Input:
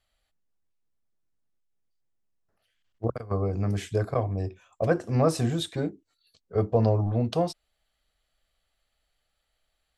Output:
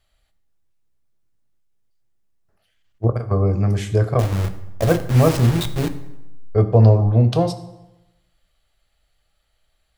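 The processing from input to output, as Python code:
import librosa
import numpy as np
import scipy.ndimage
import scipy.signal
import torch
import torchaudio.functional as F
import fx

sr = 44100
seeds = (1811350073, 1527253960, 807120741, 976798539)

y = fx.delta_hold(x, sr, step_db=-26.5, at=(4.19, 6.55))
y = fx.low_shelf(y, sr, hz=130.0, db=6.5)
y = fx.rev_fdn(y, sr, rt60_s=0.97, lf_ratio=1.05, hf_ratio=0.75, size_ms=50.0, drr_db=8.5)
y = y * 10.0 ** (5.5 / 20.0)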